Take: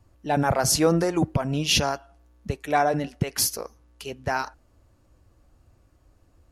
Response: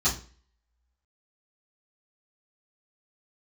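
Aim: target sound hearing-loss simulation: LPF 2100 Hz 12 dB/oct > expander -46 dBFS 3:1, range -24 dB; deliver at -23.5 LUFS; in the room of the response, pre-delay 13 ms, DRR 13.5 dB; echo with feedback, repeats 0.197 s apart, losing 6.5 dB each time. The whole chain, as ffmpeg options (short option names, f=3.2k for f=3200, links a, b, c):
-filter_complex "[0:a]aecho=1:1:197|394|591|788|985|1182:0.473|0.222|0.105|0.0491|0.0231|0.0109,asplit=2[a][b];[1:a]atrim=start_sample=2205,adelay=13[c];[b][c]afir=irnorm=-1:irlink=0,volume=-24.5dB[d];[a][d]amix=inputs=2:normalize=0,lowpass=2.1k,agate=range=-24dB:threshold=-46dB:ratio=3,volume=1.5dB"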